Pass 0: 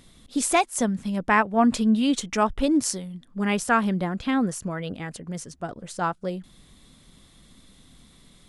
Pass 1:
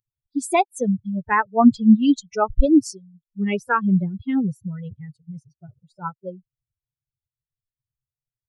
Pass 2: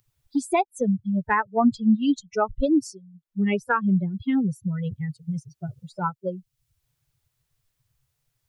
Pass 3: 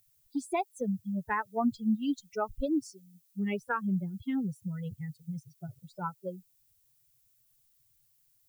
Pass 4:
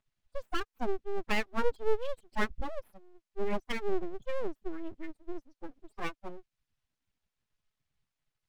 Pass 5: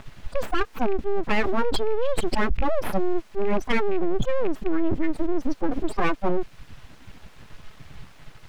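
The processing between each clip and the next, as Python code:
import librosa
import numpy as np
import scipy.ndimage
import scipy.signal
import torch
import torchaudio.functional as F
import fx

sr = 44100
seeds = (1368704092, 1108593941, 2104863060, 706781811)

y1 = fx.bin_expand(x, sr, power=3.0)
y1 = fx.tilt_eq(y1, sr, slope=-2.5)
y1 = y1 * librosa.db_to_amplitude(5.5)
y2 = fx.band_squash(y1, sr, depth_pct=70)
y2 = y2 * librosa.db_to_amplitude(-3.0)
y3 = fx.dmg_noise_colour(y2, sr, seeds[0], colour='violet', level_db=-60.0)
y3 = y3 * librosa.db_to_amplitude(-9.0)
y4 = scipy.signal.sosfilt(scipy.signal.butter(2, 2400.0, 'lowpass', fs=sr, output='sos'), y3)
y4 = y4 + 0.7 * np.pad(y4, (int(4.7 * sr / 1000.0), 0))[:len(y4)]
y4 = np.abs(y4)
y5 = fx.rattle_buzz(y4, sr, strikes_db=-43.0, level_db=-34.0)
y5 = fx.lowpass(y5, sr, hz=2000.0, slope=6)
y5 = fx.env_flatten(y5, sr, amount_pct=100)
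y5 = y5 * librosa.db_to_amplitude(1.5)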